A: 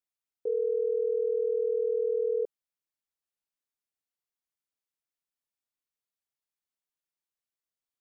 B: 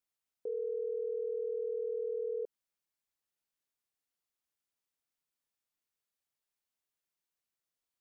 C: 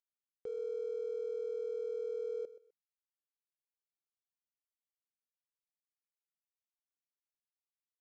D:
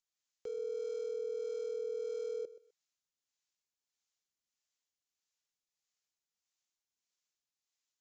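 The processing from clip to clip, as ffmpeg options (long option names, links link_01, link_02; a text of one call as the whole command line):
ffmpeg -i in.wav -af "alimiter=level_in=8dB:limit=-24dB:level=0:latency=1:release=102,volume=-8dB,volume=1.5dB" out.wav
ffmpeg -i in.wav -af "acompressor=mode=upward:threshold=-44dB:ratio=2.5,aresample=16000,aeval=exprs='sgn(val(0))*max(abs(val(0))-0.00133,0)':channel_layout=same,aresample=44100,aecho=1:1:127|254:0.158|0.0396,volume=-3dB" out.wav
ffmpeg -i in.wav -filter_complex "[0:a]crystalizer=i=4:c=0,acrossover=split=480[link_01][link_02];[link_01]aeval=exprs='val(0)*(1-0.5/2+0.5/2*cos(2*PI*1.6*n/s))':channel_layout=same[link_03];[link_02]aeval=exprs='val(0)*(1-0.5/2-0.5/2*cos(2*PI*1.6*n/s))':channel_layout=same[link_04];[link_03][link_04]amix=inputs=2:normalize=0,aresample=16000,aresample=44100,volume=2dB" out.wav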